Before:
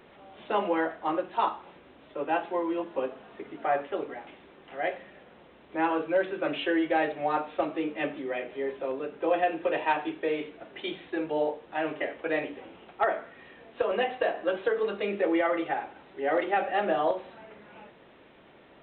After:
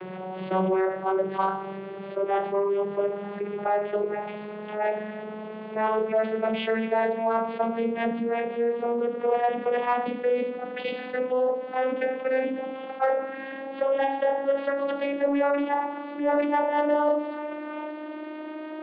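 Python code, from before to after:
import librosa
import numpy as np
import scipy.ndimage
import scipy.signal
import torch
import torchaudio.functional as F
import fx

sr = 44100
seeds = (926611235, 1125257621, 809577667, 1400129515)

p1 = fx.vocoder_glide(x, sr, note=54, semitones=9)
p2 = scipy.signal.sosfilt(scipy.signal.butter(2, 3200.0, 'lowpass', fs=sr, output='sos'), p1)
p3 = fx.peak_eq(p2, sr, hz=250.0, db=-10.5, octaves=0.3)
p4 = 10.0 ** (-25.0 / 20.0) * np.tanh(p3 / 10.0 ** (-25.0 / 20.0))
p5 = p3 + F.gain(torch.from_numpy(p4), -9.5).numpy()
y = fx.env_flatten(p5, sr, amount_pct=50)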